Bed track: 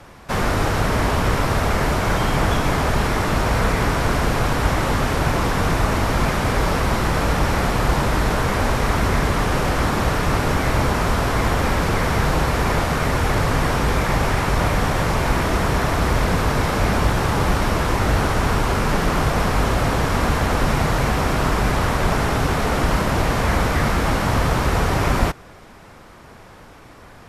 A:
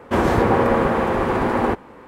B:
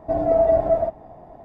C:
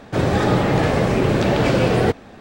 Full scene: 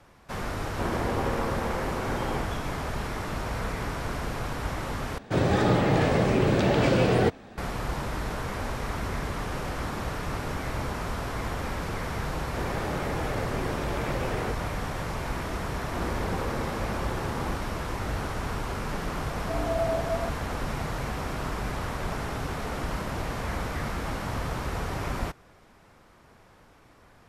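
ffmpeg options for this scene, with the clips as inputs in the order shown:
ffmpeg -i bed.wav -i cue0.wav -i cue1.wav -i cue2.wav -filter_complex "[1:a]asplit=2[link_01][link_02];[3:a]asplit=2[link_03][link_04];[0:a]volume=-12.5dB[link_05];[link_04]bass=frequency=250:gain=-5,treble=frequency=4000:gain=-10[link_06];[2:a]aecho=1:1:7.2:0.65[link_07];[link_05]asplit=2[link_08][link_09];[link_08]atrim=end=5.184[link_10];[link_03]atrim=end=2.4,asetpts=PTS-STARTPTS,volume=-5dB[link_11];[link_09]atrim=start=7.576[link_12];[link_01]atrim=end=2.07,asetpts=PTS-STARTPTS,volume=-13dB,afade=type=in:duration=0.004:curve=hsin,afade=type=out:start_time=2.066:duration=0.004:curve=hsin,adelay=670[link_13];[link_06]atrim=end=2.4,asetpts=PTS-STARTPTS,volume=-14.5dB,afade=type=in:duration=0.004:curve=hsin,afade=type=out:start_time=2.396:duration=0.004:curve=hsin,adelay=12410[link_14];[link_02]atrim=end=2.07,asetpts=PTS-STARTPTS,volume=-17dB,afade=type=in:duration=0.004:curve=hsin,afade=type=out:start_time=2.066:duration=0.004:curve=hsin,adelay=15820[link_15];[link_07]atrim=end=1.44,asetpts=PTS-STARTPTS,volume=-12.5dB,afade=type=in:duration=0.004:curve=hsin,afade=type=out:start_time=1.436:duration=0.004:curve=hsin,adelay=855540S[link_16];[link_10][link_11]acrossfade=duration=0.004:curve1=hsin:curve2=hsin[link_17];[link_17][link_12]acrossfade=duration=0.004:curve1=hsin:curve2=hsin[link_18];[link_18][link_13][link_14][link_15][link_16]amix=inputs=5:normalize=0" out.wav

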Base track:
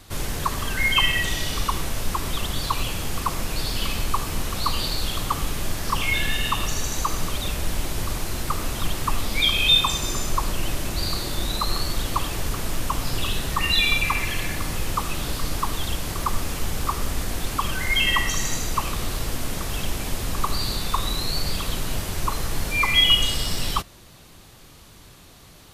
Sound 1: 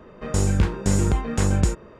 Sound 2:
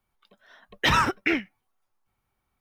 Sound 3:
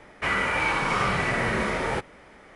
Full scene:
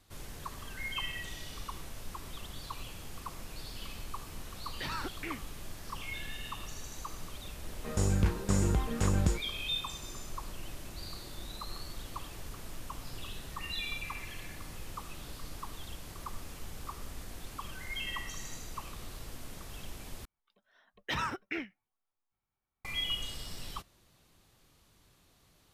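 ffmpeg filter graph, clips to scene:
ffmpeg -i bed.wav -i cue0.wav -i cue1.wav -filter_complex "[2:a]asplit=2[link_01][link_02];[0:a]volume=-17.5dB[link_03];[link_01]alimiter=limit=-17dB:level=0:latency=1:release=71[link_04];[link_03]asplit=2[link_05][link_06];[link_05]atrim=end=20.254[link_07];[link_02]atrim=end=2.6,asetpts=PTS-STARTPTS,volume=-13dB[link_08];[link_06]atrim=start=22.846[link_09];[link_04]atrim=end=2.6,asetpts=PTS-STARTPTS,volume=-12.5dB,afade=type=in:duration=0.004:curve=hsin,afade=type=out:start_time=2.596:duration=0.004:curve=hsin,adelay=175077S[link_10];[1:a]atrim=end=1.99,asetpts=PTS-STARTPTS,volume=-8dB,afade=type=in:duration=0.004:curve=hsin,afade=type=out:start_time=1.986:duration=0.004:curve=hsin,adelay=7630[link_11];[link_07][link_08]acrossfade=duration=0.004:curve1=hsin:curve2=hsin[link_12];[link_12][link_09]acrossfade=duration=0.004:curve1=hsin:curve2=hsin[link_13];[link_13][link_10][link_11]amix=inputs=3:normalize=0" out.wav

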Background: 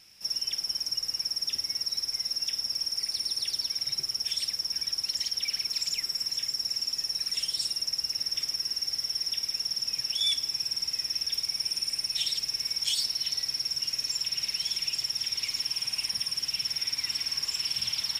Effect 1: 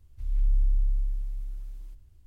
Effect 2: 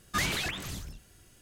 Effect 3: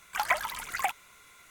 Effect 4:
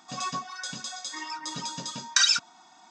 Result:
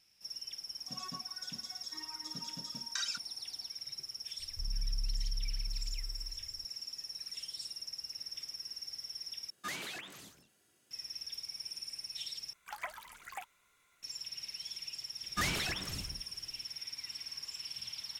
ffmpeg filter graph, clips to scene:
ffmpeg -i bed.wav -i cue0.wav -i cue1.wav -i cue2.wav -i cue3.wav -filter_complex "[2:a]asplit=2[link_01][link_02];[0:a]volume=-13dB[link_03];[4:a]equalizer=frequency=190:width=0.66:gain=8.5[link_04];[1:a]acompressor=threshold=-32dB:ratio=3:attack=2.7:release=38:knee=1:detection=peak[link_05];[link_01]highpass=240[link_06];[link_03]asplit=3[link_07][link_08][link_09];[link_07]atrim=end=9.504[link_10];[link_06]atrim=end=1.41,asetpts=PTS-STARTPTS,volume=-10.5dB[link_11];[link_08]atrim=start=10.906:end=12.534[link_12];[3:a]atrim=end=1.5,asetpts=PTS-STARTPTS,volume=-15dB[link_13];[link_09]atrim=start=14.026[link_14];[link_04]atrim=end=2.9,asetpts=PTS-STARTPTS,volume=-16.5dB,afade=type=in:duration=0.004:curve=hsin,afade=type=out:start_time=2.896:duration=0.004:curve=hsin,adelay=790[link_15];[link_05]atrim=end=2.26,asetpts=PTS-STARTPTS,volume=-3dB,afade=type=in:duration=0.004:curve=hsin,afade=type=out:start_time=2.256:duration=0.004:curve=hsin,adelay=4390[link_16];[link_02]atrim=end=1.41,asetpts=PTS-STARTPTS,volume=-4dB,afade=type=in:duration=0.004:curve=hsin,afade=type=out:start_time=1.406:duration=0.004:curve=hsin,adelay=15230[link_17];[link_10][link_11]acrossfade=duration=0.004:curve1=hsin:curve2=hsin[link_18];[link_18][link_12]acrossfade=duration=0.004:curve1=hsin:curve2=hsin[link_19];[link_19][link_13]acrossfade=duration=0.004:curve1=hsin:curve2=hsin[link_20];[link_20][link_14]acrossfade=duration=0.004:curve1=hsin:curve2=hsin[link_21];[link_21][link_15][link_16][link_17]amix=inputs=4:normalize=0" out.wav

